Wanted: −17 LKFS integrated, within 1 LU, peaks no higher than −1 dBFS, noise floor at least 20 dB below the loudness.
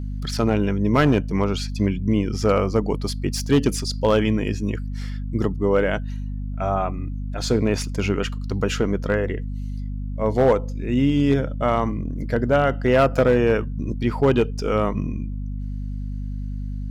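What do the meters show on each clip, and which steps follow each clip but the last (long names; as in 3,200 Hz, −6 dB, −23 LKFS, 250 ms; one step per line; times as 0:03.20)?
share of clipped samples 0.9%; peaks flattened at −10.0 dBFS; mains hum 50 Hz; hum harmonics up to 250 Hz; level of the hum −26 dBFS; integrated loudness −22.5 LKFS; sample peak −10.0 dBFS; target loudness −17.0 LKFS
→ clipped peaks rebuilt −10 dBFS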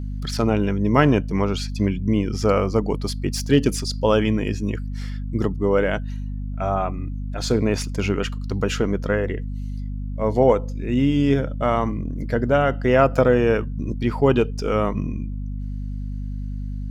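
share of clipped samples 0.0%; mains hum 50 Hz; hum harmonics up to 250 Hz; level of the hum −26 dBFS
→ mains-hum notches 50/100/150/200/250 Hz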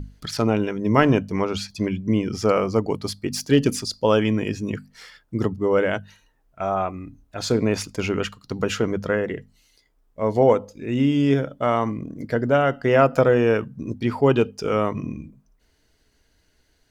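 mains hum none found; integrated loudness −22.5 LKFS; sample peak −1.5 dBFS; target loudness −17.0 LKFS
→ level +5.5 dB
brickwall limiter −1 dBFS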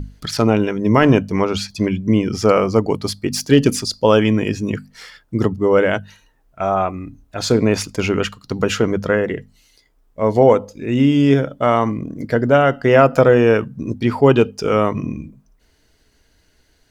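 integrated loudness −17.0 LKFS; sample peak −1.0 dBFS; background noise floor −59 dBFS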